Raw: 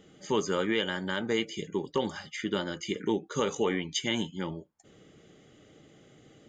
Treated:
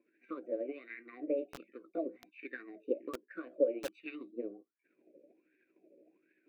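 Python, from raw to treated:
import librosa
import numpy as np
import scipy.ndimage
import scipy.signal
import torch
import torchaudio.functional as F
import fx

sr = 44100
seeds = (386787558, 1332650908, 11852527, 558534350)

p1 = fx.pitch_heads(x, sr, semitones=4.0)
p2 = fx.tilt_shelf(p1, sr, db=9.0, hz=1300.0)
p3 = fx.rider(p2, sr, range_db=10, speed_s=0.5)
p4 = p2 + (p3 * librosa.db_to_amplitude(0.5))
p5 = fx.transient(p4, sr, attack_db=7, sustain_db=0)
p6 = fx.wah_lfo(p5, sr, hz=1.3, low_hz=530.0, high_hz=1700.0, q=14.0)
p7 = fx.double_bandpass(p6, sr, hz=870.0, octaves=2.9)
p8 = fx.echo_crushed(p7, sr, ms=229, feedback_pct=35, bits=7, wet_db=-8.0)
y = p8 * librosa.db_to_amplitude(11.5)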